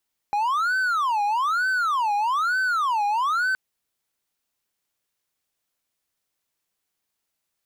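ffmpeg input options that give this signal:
-f lavfi -i "aevalsrc='0.126*(1-4*abs(mod((1173*t-357/(2*PI*1.1)*sin(2*PI*1.1*t))+0.25,1)-0.5))':d=3.22:s=44100"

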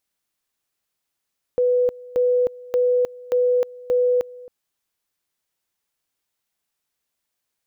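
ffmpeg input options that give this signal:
-f lavfi -i "aevalsrc='pow(10,(-15-21.5*gte(mod(t,0.58),0.31))/20)*sin(2*PI*495*t)':d=2.9:s=44100"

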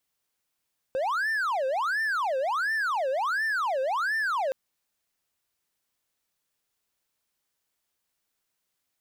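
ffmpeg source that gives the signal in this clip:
-f lavfi -i "aevalsrc='0.075*(1-4*abs(mod((1155*t-635/(2*PI*1.4)*sin(2*PI*1.4*t))+0.25,1)-0.5))':d=3.57:s=44100"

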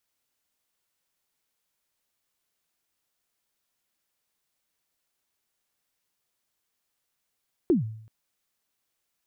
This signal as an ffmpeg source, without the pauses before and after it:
-f lavfi -i "aevalsrc='0.178*pow(10,-3*t/0.65)*sin(2*PI*(390*0.135/log(110/390)*(exp(log(110/390)*min(t,0.135)/0.135)-1)+110*max(t-0.135,0)))':d=0.38:s=44100"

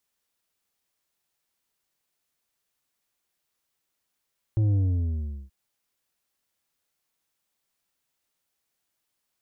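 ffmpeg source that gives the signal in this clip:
-f lavfi -i "aevalsrc='0.1*clip((0.93-t)/0.76,0,1)*tanh(2.24*sin(2*PI*110*0.93/log(65/110)*(exp(log(65/110)*t/0.93)-1)))/tanh(2.24)':d=0.93:s=44100"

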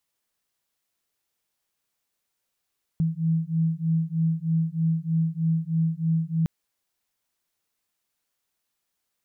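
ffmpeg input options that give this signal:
-f lavfi -i "aevalsrc='0.0596*(sin(2*PI*161*t)+sin(2*PI*164.2*t))':d=3.46:s=44100"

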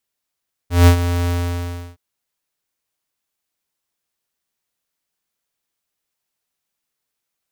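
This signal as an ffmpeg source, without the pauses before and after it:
-f lavfi -i "aevalsrc='0.447*(2*lt(mod(87.2*t,1),0.5)-1)':d=1.266:s=44100,afade=t=in:d=0.168,afade=t=out:st=0.168:d=0.09:silence=0.266,afade=t=out:st=0.58:d=0.686"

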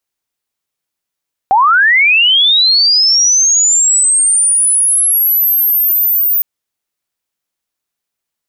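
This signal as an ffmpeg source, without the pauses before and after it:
-f lavfi -i "aevalsrc='pow(10,(-5.5-3.5*t/4.91)/20)*sin(2*PI*(740*t+14260*t*t/(2*4.91)))':d=4.91:s=44100"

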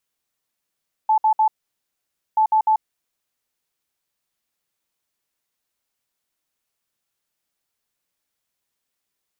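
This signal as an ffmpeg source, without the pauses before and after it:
-f lavfi -i "aevalsrc='0.224*sin(2*PI*870*t)*clip(min(mod(mod(t,1.28),0.15),0.09-mod(mod(t,1.28),0.15))/0.005,0,1)*lt(mod(t,1.28),0.45)':d=2.56:s=44100"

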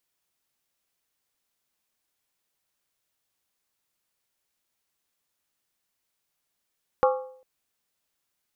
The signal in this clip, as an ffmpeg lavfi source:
-f lavfi -i "aevalsrc='0.158*pow(10,-3*t/0.59)*sin(2*PI*516*t)+0.106*pow(10,-3*t/0.467)*sin(2*PI*822.5*t)+0.0708*pow(10,-3*t/0.404)*sin(2*PI*1102.2*t)+0.0473*pow(10,-3*t/0.389)*sin(2*PI*1184.7*t)+0.0316*pow(10,-3*t/0.362)*sin(2*PI*1368.9*t)':d=0.4:s=44100"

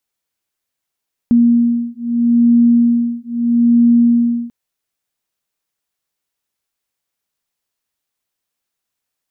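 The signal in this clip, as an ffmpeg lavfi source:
-f lavfi -i "aevalsrc='0.237*(sin(2*PI*236*t)+sin(2*PI*236.78*t))':d=3.19:s=44100"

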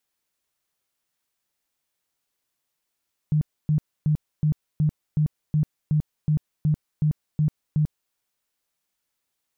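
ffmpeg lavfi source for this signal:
-f lavfi -i "aevalsrc='0.141*sin(2*PI*152*mod(t,0.37))*lt(mod(t,0.37),14/152)':d=4.81:s=44100"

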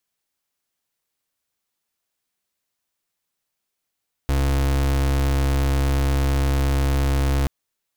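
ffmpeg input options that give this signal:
-f lavfi -i "aevalsrc='0.106*(2*lt(mod(68.6*t,1),0.35)-1)':d=3.18:s=44100"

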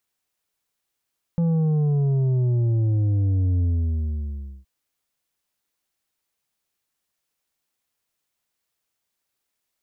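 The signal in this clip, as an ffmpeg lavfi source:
-f lavfi -i "aevalsrc='0.119*clip((3.27-t)/1.03,0,1)*tanh(2.11*sin(2*PI*170*3.27/log(65/170)*(exp(log(65/170)*t/3.27)-1)))/tanh(2.11)':d=3.27:s=44100"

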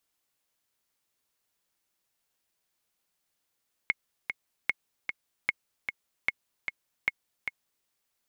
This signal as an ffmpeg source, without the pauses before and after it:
-f lavfi -i "aevalsrc='pow(10,(-11.5-6.5*gte(mod(t,2*60/151),60/151))/20)*sin(2*PI*2170*mod(t,60/151))*exp(-6.91*mod(t,60/151)/0.03)':d=3.97:s=44100"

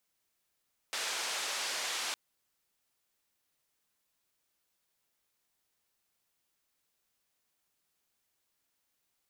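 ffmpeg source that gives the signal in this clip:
-f lavfi -i "anoisesrc=c=white:d=1.21:r=44100:seed=1,highpass=f=550,lowpass=f=6200,volume=-25.5dB"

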